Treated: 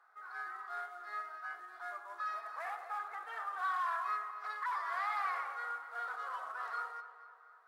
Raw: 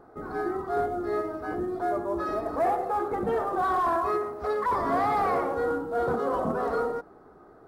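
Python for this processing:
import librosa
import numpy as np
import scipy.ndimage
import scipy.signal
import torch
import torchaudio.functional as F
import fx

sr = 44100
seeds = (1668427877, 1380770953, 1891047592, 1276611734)

p1 = scipy.signal.sosfilt(scipy.signal.butter(4, 1400.0, 'highpass', fs=sr, output='sos'), x)
p2 = fx.tilt_eq(p1, sr, slope=-3.5)
p3 = p2 + fx.echo_filtered(p2, sr, ms=241, feedback_pct=56, hz=3600.0, wet_db=-12.5, dry=0)
y = p3 * 10.0 ** (1.0 / 20.0)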